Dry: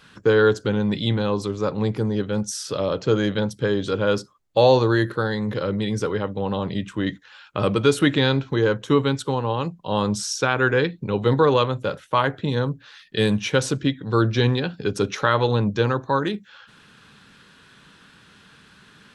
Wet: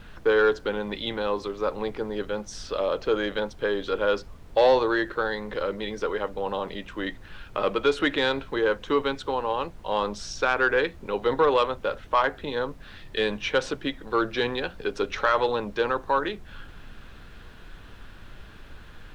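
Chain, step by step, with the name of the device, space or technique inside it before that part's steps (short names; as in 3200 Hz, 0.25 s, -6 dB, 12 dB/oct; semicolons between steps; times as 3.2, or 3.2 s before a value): aircraft cabin announcement (BPF 430–3500 Hz; soft clip -10 dBFS, distortion -21 dB; brown noise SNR 16 dB)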